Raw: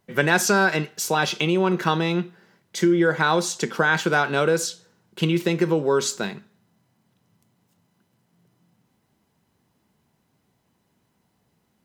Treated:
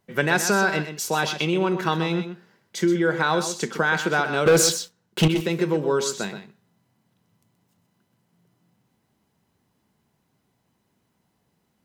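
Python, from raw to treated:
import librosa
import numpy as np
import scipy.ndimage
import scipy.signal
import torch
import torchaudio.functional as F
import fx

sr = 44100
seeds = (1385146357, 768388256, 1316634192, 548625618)

p1 = fx.leveller(x, sr, passes=3, at=(4.46, 5.28))
p2 = p1 + fx.echo_single(p1, sr, ms=126, db=-10.0, dry=0)
y = p2 * 10.0 ** (-2.0 / 20.0)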